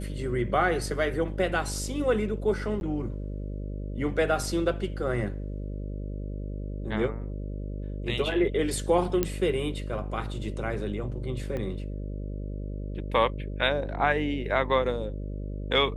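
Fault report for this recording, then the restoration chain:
buzz 50 Hz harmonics 12 -34 dBFS
2.80–2.81 s: dropout 11 ms
9.23 s: pop -10 dBFS
11.57 s: pop -22 dBFS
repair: de-click; de-hum 50 Hz, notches 12; interpolate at 2.80 s, 11 ms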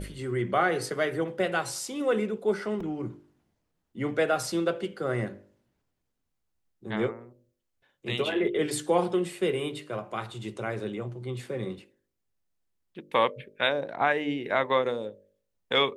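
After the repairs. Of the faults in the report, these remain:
11.57 s: pop

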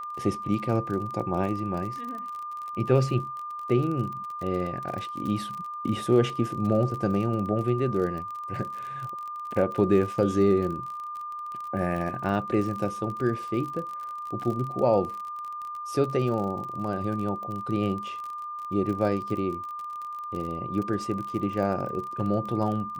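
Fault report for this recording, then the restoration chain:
crackle 40 per s -33 dBFS
whine 1.2 kHz -33 dBFS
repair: de-click; band-stop 1.2 kHz, Q 30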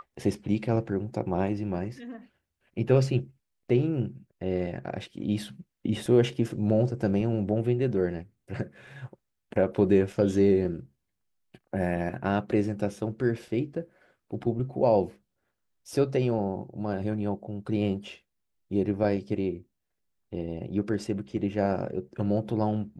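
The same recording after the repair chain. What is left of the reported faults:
nothing left

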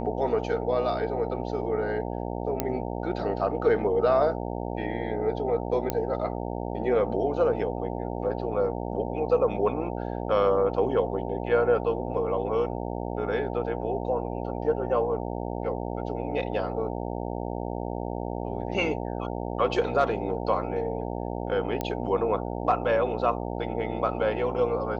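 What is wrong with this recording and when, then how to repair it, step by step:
buzz 60 Hz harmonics 15 -32 dBFS
2.60 s: pop -10 dBFS
5.90 s: pop -11 dBFS
21.81 s: pop -15 dBFS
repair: de-click; de-hum 60 Hz, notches 15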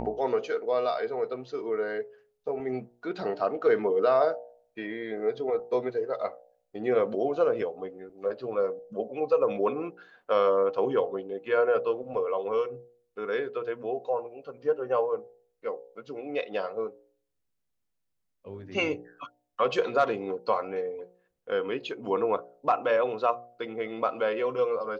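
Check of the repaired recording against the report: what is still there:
nothing left

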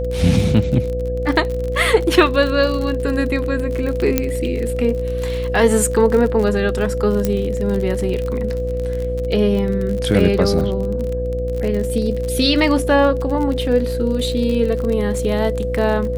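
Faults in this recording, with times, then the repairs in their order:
buzz 60 Hz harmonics 11 -24 dBFS
crackle 44 per s -23 dBFS
whine 500 Hz -22 dBFS
4.18 s: pop -1 dBFS
7.25 s: pop -5 dBFS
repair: de-click; de-hum 60 Hz, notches 11; band-stop 500 Hz, Q 30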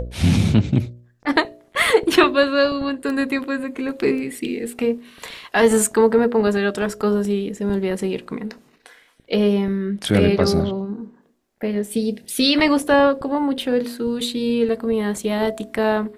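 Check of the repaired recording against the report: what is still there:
4.18 s: pop
7.25 s: pop

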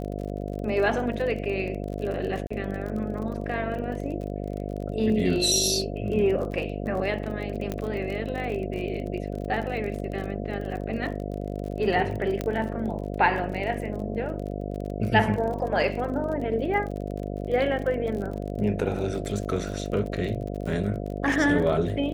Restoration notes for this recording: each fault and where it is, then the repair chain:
buzz 50 Hz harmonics 14 -32 dBFS
crackle 38 per s -33 dBFS
2.47–2.50 s: dropout 35 ms
7.72 s: pop -16 dBFS
12.41 s: pop -15 dBFS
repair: de-click; de-hum 50 Hz, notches 14; interpolate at 2.47 s, 35 ms

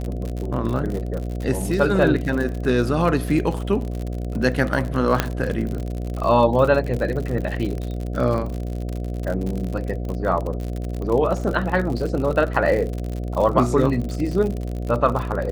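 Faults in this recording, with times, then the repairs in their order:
buzz 60 Hz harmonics 12 -27 dBFS
crackle 59 per s -26 dBFS
5.20 s: pop -3 dBFS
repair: de-click; de-hum 60 Hz, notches 12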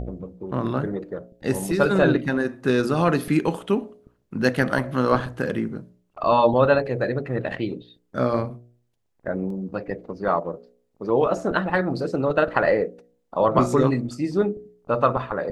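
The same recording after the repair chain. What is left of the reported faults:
nothing left

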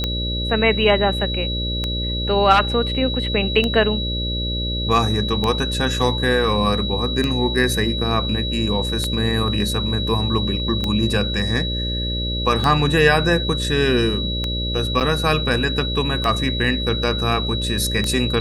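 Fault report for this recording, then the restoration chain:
buzz 60 Hz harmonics 10 -25 dBFS
tick 33 1/3 rpm -8 dBFS
whine 3.9 kHz -25 dBFS
15.00–15.01 s: dropout 7.4 ms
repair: de-click; band-stop 3.9 kHz, Q 30; de-hum 60 Hz, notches 10; interpolate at 15.00 s, 7.4 ms

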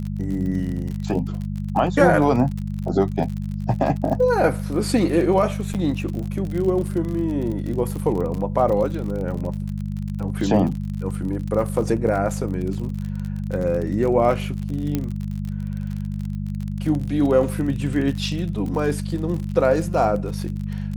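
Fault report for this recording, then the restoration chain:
crackle 44 per s -28 dBFS
hum 50 Hz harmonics 4 -27 dBFS
5.74–5.75 s: dropout 7.9 ms
14.95 s: pop -10 dBFS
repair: de-click; de-hum 50 Hz, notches 4; interpolate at 5.74 s, 7.9 ms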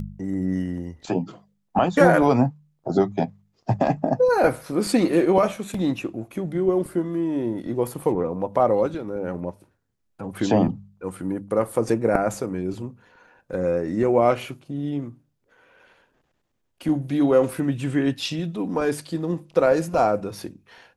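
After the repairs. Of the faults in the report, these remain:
nothing left

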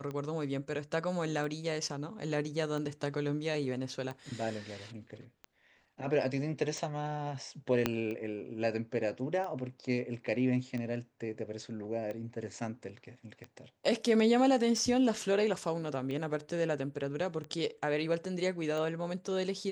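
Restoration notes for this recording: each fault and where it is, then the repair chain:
tick 45 rpm -28 dBFS
7.86 s: pop -13 dBFS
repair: de-click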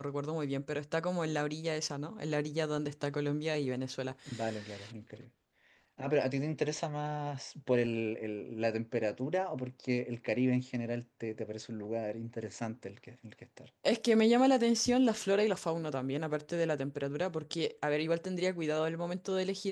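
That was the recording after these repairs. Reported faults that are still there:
7.86 s: pop

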